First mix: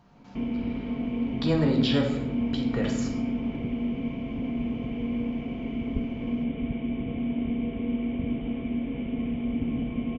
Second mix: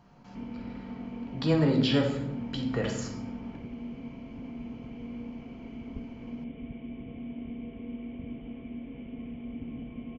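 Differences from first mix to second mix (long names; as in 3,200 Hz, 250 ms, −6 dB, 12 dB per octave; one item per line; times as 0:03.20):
background −10.5 dB
master: add notch filter 3,700 Hz, Q 12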